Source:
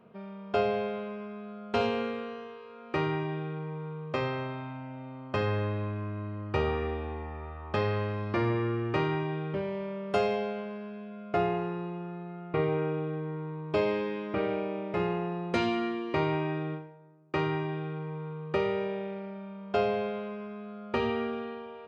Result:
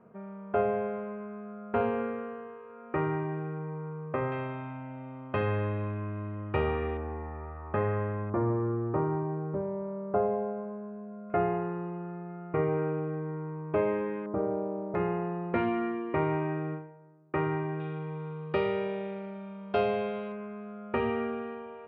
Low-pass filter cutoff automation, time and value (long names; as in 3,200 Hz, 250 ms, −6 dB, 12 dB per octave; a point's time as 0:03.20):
low-pass filter 24 dB per octave
1,900 Hz
from 0:04.32 2,800 Hz
from 0:06.97 1,900 Hz
from 0:08.30 1,200 Hz
from 0:11.30 2,000 Hz
from 0:14.26 1,100 Hz
from 0:14.95 2,100 Hz
from 0:17.80 3,900 Hz
from 0:20.32 2,500 Hz